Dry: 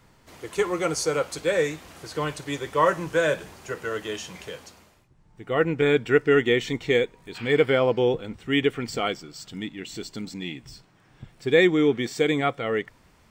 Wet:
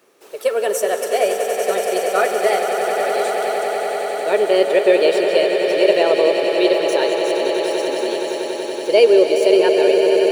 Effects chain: high shelf 5800 Hz +7.5 dB; digital reverb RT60 3.9 s, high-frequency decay 0.8×, pre-delay 0.115 s, DRR 10 dB; varispeed +29%; resonant high-pass 410 Hz, resonance Q 4.1; swelling echo 94 ms, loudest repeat 8, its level -10.5 dB; gain -1 dB

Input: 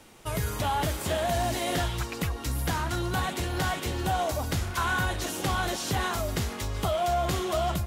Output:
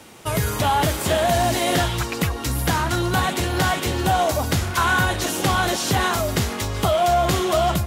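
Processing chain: HPF 73 Hz; gain +8.5 dB

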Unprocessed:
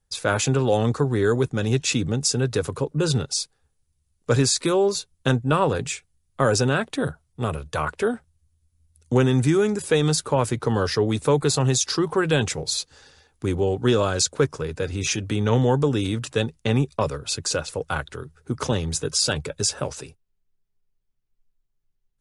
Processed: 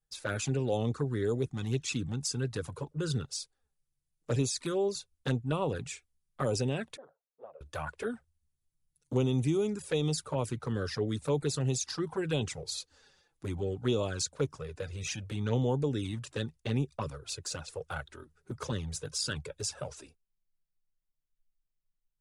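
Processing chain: envelope flanger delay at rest 6.4 ms, full sweep at -15.5 dBFS; 6.97–7.61 ladder band-pass 590 Hz, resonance 65%; gain -9 dB

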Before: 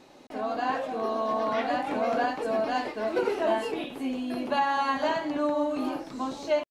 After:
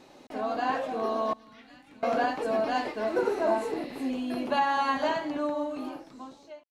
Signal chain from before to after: ending faded out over 1.77 s; 1.33–2.03 passive tone stack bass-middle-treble 6-0-2; 3.15–4.07 spectral repair 1700–5500 Hz before

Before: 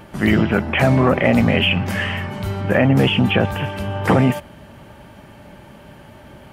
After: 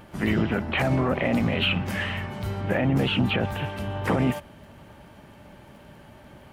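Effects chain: crackle 13/s -42 dBFS; harmoniser -12 st -15 dB, +3 st -14 dB, +5 st -17 dB; limiter -7 dBFS, peak gain reduction 5.5 dB; gain -6.5 dB

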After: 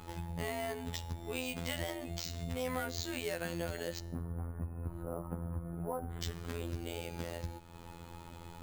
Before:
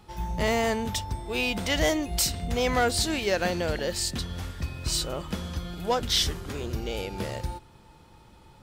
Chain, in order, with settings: 3.99–6.23 LPF 1200 Hz 24 dB/oct; de-hum 152.4 Hz, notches 36; compressor 3:1, threshold -45 dBFS, peak gain reduction 18 dB; robotiser 84.8 Hz; careless resampling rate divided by 4×, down filtered, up hold; gain +6.5 dB

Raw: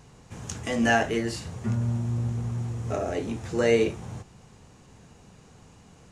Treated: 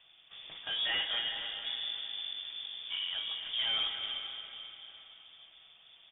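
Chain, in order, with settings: HPF 150 Hz 24 dB/oct; comb 6.1 ms, depth 30%; hard clip -22.5 dBFS, distortion -8 dB; frequency shift -94 Hz; on a send: diffused feedback echo 0.475 s, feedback 40%, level -9 dB; on the sum: non-linear reverb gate 0.33 s rising, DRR 6.5 dB; inverted band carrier 3500 Hz; gain -7.5 dB

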